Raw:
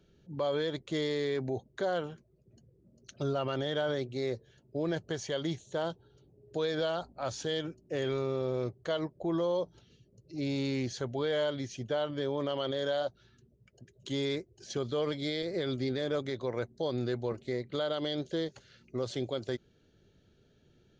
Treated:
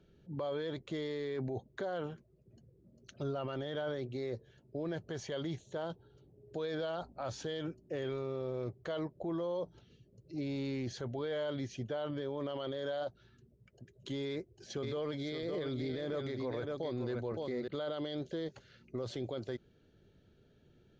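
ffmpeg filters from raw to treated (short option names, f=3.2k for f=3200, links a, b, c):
-filter_complex "[0:a]asettb=1/sr,asplit=3[a][b][c];[a]atrim=end=14.264[d];[b]atrim=start=14.26:end=17.68,asetpts=PTS-STARTPTS,afade=t=in:d=0.004:c=qsin,afade=t=out:st=3.416:d=0.004:c=qsin,aecho=1:1:564:0.422,atrim=end_sample=150822[e];[c]atrim=start=17.676[f];[d][e]acrossfade=d=0.004:c1=hsin:c2=qsin[g];[g][f]acrossfade=d=0.004:c1=qsin:c2=hsin,lowpass=f=3k:p=1,alimiter=level_in=5.5dB:limit=-24dB:level=0:latency=1:release=19,volume=-5.5dB"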